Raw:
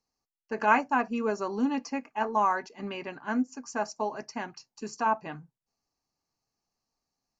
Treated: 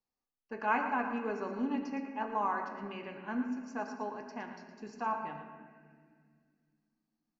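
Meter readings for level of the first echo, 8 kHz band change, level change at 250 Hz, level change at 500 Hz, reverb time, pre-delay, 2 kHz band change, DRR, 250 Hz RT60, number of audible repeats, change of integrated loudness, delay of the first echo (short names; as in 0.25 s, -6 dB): -10.5 dB, n/a, -5.0 dB, -7.0 dB, 2.0 s, 4 ms, -6.5 dB, 3.5 dB, 3.2 s, 1, -6.5 dB, 0.114 s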